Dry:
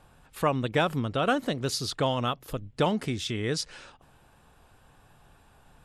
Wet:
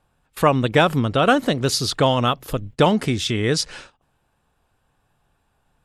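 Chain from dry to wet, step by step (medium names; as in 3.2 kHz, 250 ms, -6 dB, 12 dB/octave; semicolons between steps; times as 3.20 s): gate -46 dBFS, range -18 dB; trim +9 dB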